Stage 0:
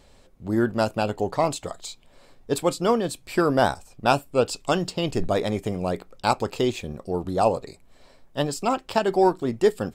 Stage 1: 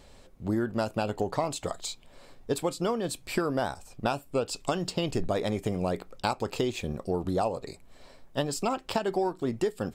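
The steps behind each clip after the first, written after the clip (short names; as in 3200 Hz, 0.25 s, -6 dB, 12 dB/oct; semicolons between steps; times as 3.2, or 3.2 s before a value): compressor 12:1, threshold -25 dBFS, peak gain reduction 12.5 dB; gain +1 dB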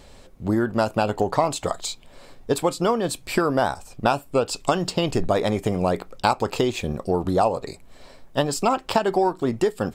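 dynamic EQ 1000 Hz, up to +4 dB, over -41 dBFS, Q 1; gain +6 dB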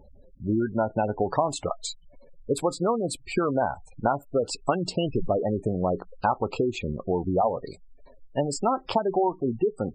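spectral gate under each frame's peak -15 dB strong; gain -3 dB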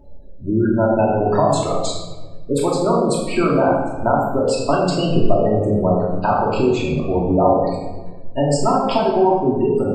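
shoebox room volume 840 m³, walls mixed, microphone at 2.8 m; gain +2 dB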